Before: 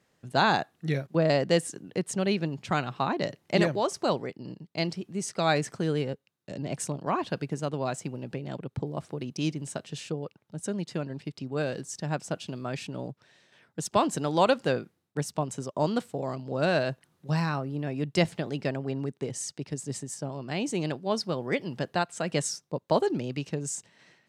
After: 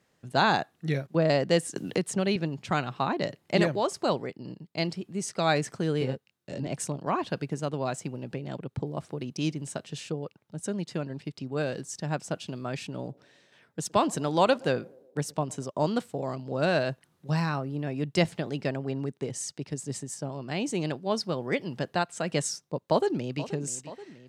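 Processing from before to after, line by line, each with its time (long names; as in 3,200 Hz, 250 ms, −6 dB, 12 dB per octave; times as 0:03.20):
0:01.76–0:02.36: multiband upward and downward compressor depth 70%
0:03.00–0:05.18: notch filter 5,900 Hz
0:05.99–0:06.67: double-tracking delay 23 ms −3 dB
0:12.82–0:15.67: feedback echo with a band-pass in the loop 116 ms, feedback 60%, band-pass 430 Hz, level −23 dB
0:22.84–0:23.42: delay throw 480 ms, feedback 65%, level −15 dB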